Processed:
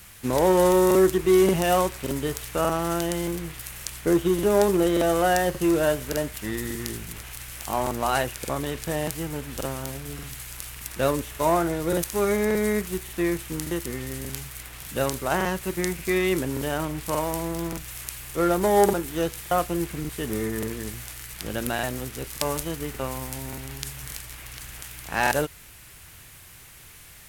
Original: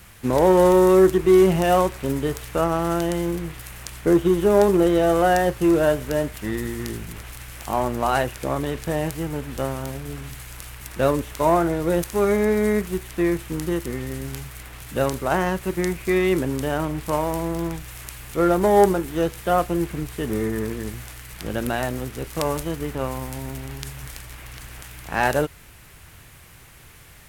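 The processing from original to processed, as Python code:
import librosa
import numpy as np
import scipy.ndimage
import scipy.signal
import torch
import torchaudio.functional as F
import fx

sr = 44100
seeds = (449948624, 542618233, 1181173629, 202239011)

y = fx.high_shelf(x, sr, hz=2500.0, db=8.0)
y = fx.buffer_crackle(y, sr, first_s=0.86, period_s=0.58, block=2048, kind='repeat')
y = y * librosa.db_to_amplitude(-4.0)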